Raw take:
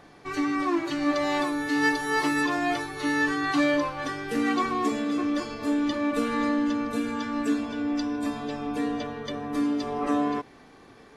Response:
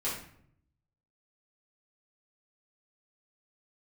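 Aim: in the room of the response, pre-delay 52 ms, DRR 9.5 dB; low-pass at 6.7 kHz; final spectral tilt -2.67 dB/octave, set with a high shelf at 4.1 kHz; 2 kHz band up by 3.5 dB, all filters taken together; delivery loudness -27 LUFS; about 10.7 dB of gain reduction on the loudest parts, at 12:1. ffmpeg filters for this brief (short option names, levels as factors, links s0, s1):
-filter_complex "[0:a]lowpass=6700,equalizer=f=2000:t=o:g=3.5,highshelf=f=4100:g=3,acompressor=threshold=0.0398:ratio=12,asplit=2[s0][s1];[1:a]atrim=start_sample=2205,adelay=52[s2];[s1][s2]afir=irnorm=-1:irlink=0,volume=0.178[s3];[s0][s3]amix=inputs=2:normalize=0,volume=1.68"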